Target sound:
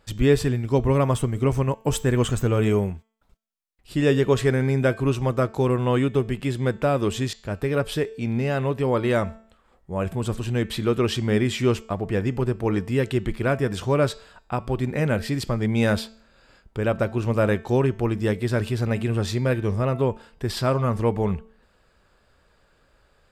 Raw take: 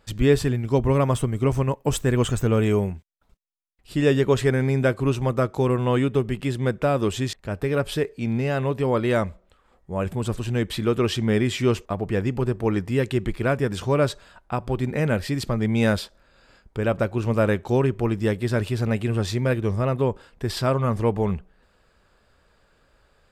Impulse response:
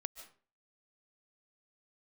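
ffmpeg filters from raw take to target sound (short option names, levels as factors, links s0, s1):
-af "bandreject=f=222.4:t=h:w=4,bandreject=f=444.8:t=h:w=4,bandreject=f=667.2:t=h:w=4,bandreject=f=889.6:t=h:w=4,bandreject=f=1112:t=h:w=4,bandreject=f=1334.4:t=h:w=4,bandreject=f=1556.8:t=h:w=4,bandreject=f=1779.2:t=h:w=4,bandreject=f=2001.6:t=h:w=4,bandreject=f=2224:t=h:w=4,bandreject=f=2446.4:t=h:w=4,bandreject=f=2668.8:t=h:w=4,bandreject=f=2891.2:t=h:w=4,bandreject=f=3113.6:t=h:w=4,bandreject=f=3336:t=h:w=4,bandreject=f=3558.4:t=h:w=4,bandreject=f=3780.8:t=h:w=4,bandreject=f=4003.2:t=h:w=4,bandreject=f=4225.6:t=h:w=4,bandreject=f=4448:t=h:w=4,bandreject=f=4670.4:t=h:w=4,bandreject=f=4892.8:t=h:w=4,bandreject=f=5115.2:t=h:w=4,bandreject=f=5337.6:t=h:w=4,bandreject=f=5560:t=h:w=4,bandreject=f=5782.4:t=h:w=4,bandreject=f=6004.8:t=h:w=4,bandreject=f=6227.2:t=h:w=4,bandreject=f=6449.6:t=h:w=4,bandreject=f=6672:t=h:w=4,bandreject=f=6894.4:t=h:w=4,bandreject=f=7116.8:t=h:w=4,bandreject=f=7339.2:t=h:w=4,bandreject=f=7561.6:t=h:w=4,bandreject=f=7784:t=h:w=4,bandreject=f=8006.4:t=h:w=4"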